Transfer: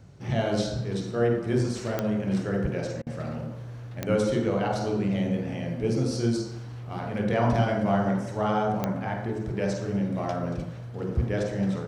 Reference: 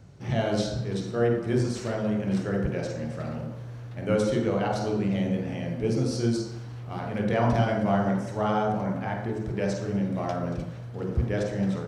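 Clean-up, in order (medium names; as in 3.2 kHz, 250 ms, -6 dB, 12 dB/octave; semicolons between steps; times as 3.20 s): de-click; interpolate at 3.02 s, 45 ms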